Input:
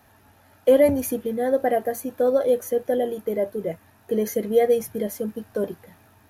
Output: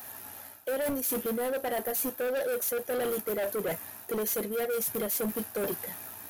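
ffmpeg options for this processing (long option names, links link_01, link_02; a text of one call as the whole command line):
ffmpeg -i in.wav -af "aemphasis=mode=production:type=bsi,areverse,acompressor=threshold=-28dB:ratio=16,areverse,volume=35dB,asoftclip=hard,volume=-35dB,volume=7dB" out.wav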